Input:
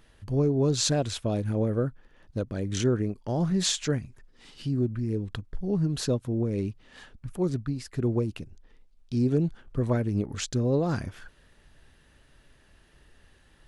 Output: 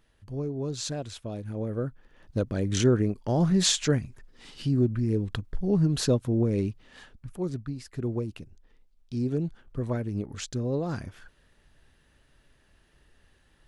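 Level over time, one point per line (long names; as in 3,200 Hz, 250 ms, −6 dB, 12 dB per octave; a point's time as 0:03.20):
0:01.43 −8 dB
0:02.38 +3 dB
0:06.50 +3 dB
0:07.37 −4 dB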